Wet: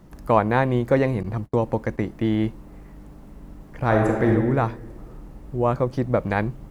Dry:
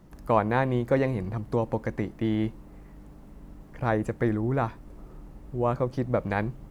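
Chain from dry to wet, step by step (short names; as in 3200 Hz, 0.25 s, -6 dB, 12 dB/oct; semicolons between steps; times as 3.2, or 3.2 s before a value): 1.23–2.12 gate -34 dBFS, range -37 dB; 3.85–4.3 reverb throw, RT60 1.4 s, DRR 0 dB; gain +4.5 dB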